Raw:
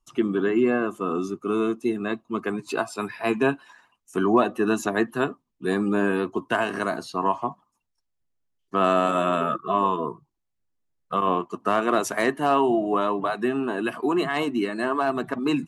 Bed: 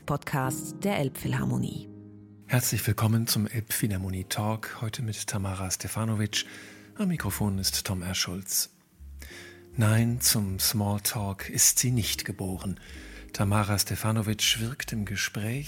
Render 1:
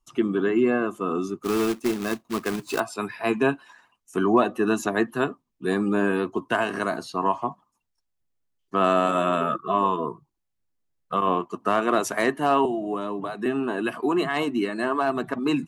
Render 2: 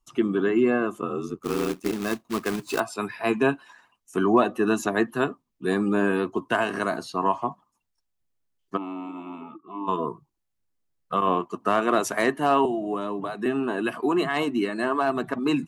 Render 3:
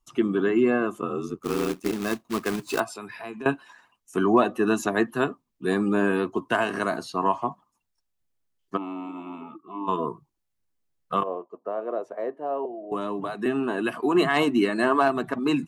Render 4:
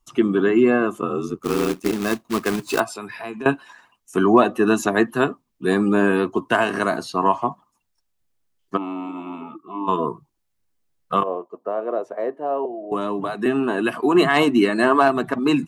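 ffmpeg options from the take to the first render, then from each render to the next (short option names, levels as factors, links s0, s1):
-filter_complex "[0:a]asettb=1/sr,asplit=3[s0][s1][s2];[s0]atrim=end=1.434[s3];[s1]atrim=start=1.43:end=2.8,asetpts=PTS-STARTPTS,afade=t=in:d=0.004:c=qsin,afade=t=out:st=1.366:d=0.004:c=qsin,acrusher=bits=2:mode=log:mix=0:aa=0.000001[s4];[s2]atrim=start=2.796[s5];[s3][s4]acrossfade=d=0.004:c1=hsin:c2=qsin[s6];[s6][s5]acrossfade=d=0.004:c1=qsin:c2=hsin,asettb=1/sr,asplit=3[s7][s8][s9];[s7]atrim=end=12.654[s10];[s8]atrim=start=12.65:end=13.46,asetpts=PTS-STARTPTS,afade=t=in:d=0.004:c=qsin,afade=t=out:st=0.806:d=0.004:c=qsin,acrossover=split=420|4200[s11][s12][s13];[s11]acompressor=threshold=0.0398:ratio=4[s14];[s12]acompressor=threshold=0.0251:ratio=4[s15];[s13]acompressor=threshold=0.00224:ratio=4[s16];[s14][s15][s16]amix=inputs=3:normalize=0[s17];[s9]atrim=start=13.456[s18];[s10][s17]acrossfade=d=0.004:c1=hsin:c2=qsin[s19];[s19][s18]acrossfade=d=0.004:c1=qsin:c2=hsin"
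-filter_complex "[0:a]asplit=3[s0][s1][s2];[s0]afade=t=out:st=1.01:d=0.02[s3];[s1]aeval=exprs='val(0)*sin(2*PI*42*n/s)':c=same,afade=t=in:st=1.01:d=0.02,afade=t=out:st=1.91:d=0.02[s4];[s2]afade=t=in:st=1.91:d=0.02[s5];[s3][s4][s5]amix=inputs=3:normalize=0,asplit=3[s6][s7][s8];[s6]afade=t=out:st=8.76:d=0.02[s9];[s7]asplit=3[s10][s11][s12];[s10]bandpass=f=300:t=q:w=8,volume=1[s13];[s11]bandpass=f=870:t=q:w=8,volume=0.501[s14];[s12]bandpass=f=2240:t=q:w=8,volume=0.355[s15];[s13][s14][s15]amix=inputs=3:normalize=0,afade=t=in:st=8.76:d=0.02,afade=t=out:st=9.87:d=0.02[s16];[s8]afade=t=in:st=9.87:d=0.02[s17];[s9][s16][s17]amix=inputs=3:normalize=0"
-filter_complex "[0:a]asettb=1/sr,asplit=3[s0][s1][s2];[s0]atrim=end=2.844[s3];[s1]atrim=start=2.84:end=3.46,asetpts=PTS-STARTPTS,afade=t=in:d=0.004:c=qsin,afade=t=out:st=0.616:d=0.004:c=qsin,acompressor=threshold=0.0178:ratio=4:attack=3.2:release=140:knee=1:detection=peak[s4];[s2]atrim=start=3.456[s5];[s3][s4]acrossfade=d=0.004:c1=hsin:c2=qsin[s6];[s6][s5]acrossfade=d=0.004:c1=qsin:c2=hsin,asettb=1/sr,asplit=3[s7][s8][s9];[s7]atrim=end=11.234[s10];[s8]atrim=start=11.23:end=12.92,asetpts=PTS-STARTPTS,afade=t=in:d=0.004:c=qsin,afade=t=out:st=1.686:d=0.004:c=qsin,bandpass=f=530:t=q:w=3.7[s11];[s9]atrim=start=12.916[s12];[s10][s11]acrossfade=d=0.004:c1=hsin:c2=qsin[s13];[s13][s12]acrossfade=d=0.004:c1=qsin:c2=hsin,asplit=3[s14][s15][s16];[s14]atrim=end=14.152[s17];[s15]atrim=start=14.148:end=15.082,asetpts=PTS-STARTPTS,volume=1.5[s18];[s16]atrim=start=15.078[s19];[s17][s18]acrossfade=d=0.004:c1=hsin:c2=hsin[s20];[s20][s19]acrossfade=d=0.004:c1=hsin:c2=hsin"
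-af "volume=1.78"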